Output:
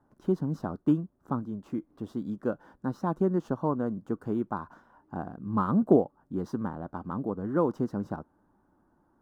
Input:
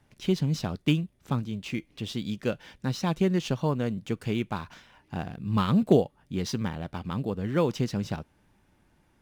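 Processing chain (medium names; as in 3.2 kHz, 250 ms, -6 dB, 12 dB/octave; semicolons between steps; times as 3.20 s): FFT filter 130 Hz 0 dB, 300 Hz +11 dB, 450 Hz +6 dB, 1.1 kHz +10 dB, 1.5 kHz +5 dB, 2.3 kHz -20 dB, 11 kHz -7 dB; trim -8 dB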